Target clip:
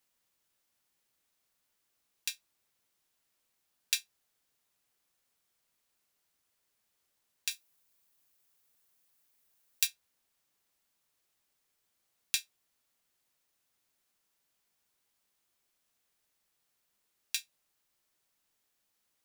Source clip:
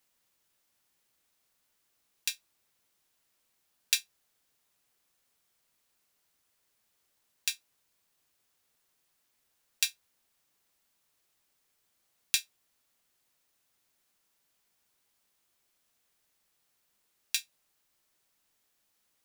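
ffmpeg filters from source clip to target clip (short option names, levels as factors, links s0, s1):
-filter_complex "[0:a]asettb=1/sr,asplit=3[s0][s1][s2];[s0]atrim=end=7.514[s3];[s1]atrim=start=7.51:end=9.87,asetpts=PTS-STARTPTS,afade=t=in:d=0.004:c=qsin,afade=t=out:st=2.356:d=0.004:c=qsin,highshelf=f=10000:g=9.5[s4];[s2]atrim=start=9.866[s5];[s3][s4]acrossfade=d=0.004:c1=hsin:c2=qsin[s6];[s6][s5]acrossfade=d=0.004:c1=qsin:c2=hsin,volume=0.668"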